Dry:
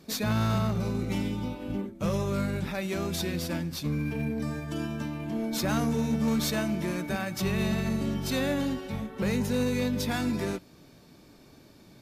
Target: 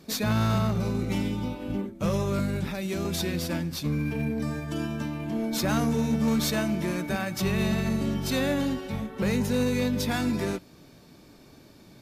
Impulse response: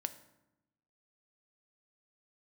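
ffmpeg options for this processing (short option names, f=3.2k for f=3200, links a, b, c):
-filter_complex "[0:a]asettb=1/sr,asplit=3[a][b][c];[a]atrim=end=2.394[d];[b]atrim=start=2.39:end=3.05,asetpts=PTS-STARTPTS,afade=t=in:d=0.004:c=qsin,afade=t=out:st=0.656:d=0.004:c=qsin,acrossover=split=470|3000[e][f][g];[f]acompressor=threshold=-40dB:ratio=6[h];[e][h][g]amix=inputs=3:normalize=0[i];[c]atrim=start=3.046[j];[d][i]acrossfade=d=0.004:c1=hsin:c2=qsin[k];[k][j]acrossfade=d=0.004:c1=qsin:c2=hsin,volume=2dB"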